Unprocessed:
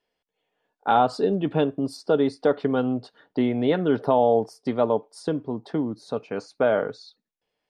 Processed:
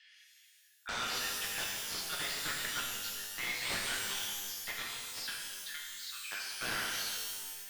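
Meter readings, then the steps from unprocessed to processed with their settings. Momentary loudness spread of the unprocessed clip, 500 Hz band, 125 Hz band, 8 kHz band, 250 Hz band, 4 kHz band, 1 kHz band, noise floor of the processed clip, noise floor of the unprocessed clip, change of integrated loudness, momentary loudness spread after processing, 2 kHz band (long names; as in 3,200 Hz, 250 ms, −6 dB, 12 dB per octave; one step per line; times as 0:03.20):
11 LU, −29.0 dB, −23.0 dB, can't be measured, −29.0 dB, +5.5 dB, −18.0 dB, −63 dBFS, −83 dBFS, −12.0 dB, 7 LU, 0.0 dB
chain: elliptic high-pass filter 1,700 Hz, stop band 60 dB
high-shelf EQ 4,800 Hz +3 dB
reversed playback
upward compression, threshold −50 dBFS
reversed playback
wrap-around overflow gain 34 dB
high-frequency loss of the air 130 metres
reverb with rising layers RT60 1.6 s, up +12 semitones, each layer −2 dB, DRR −1.5 dB
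level +5.5 dB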